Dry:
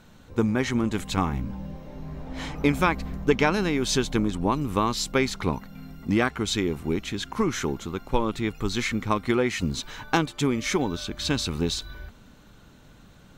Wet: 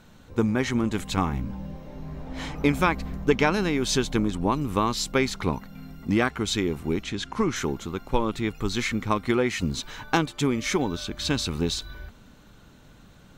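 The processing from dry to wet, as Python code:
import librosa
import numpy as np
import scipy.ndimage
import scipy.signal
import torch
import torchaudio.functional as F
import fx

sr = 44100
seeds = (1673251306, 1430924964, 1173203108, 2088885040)

y = fx.lowpass(x, sr, hz=8700.0, slope=12, at=(7.03, 7.56))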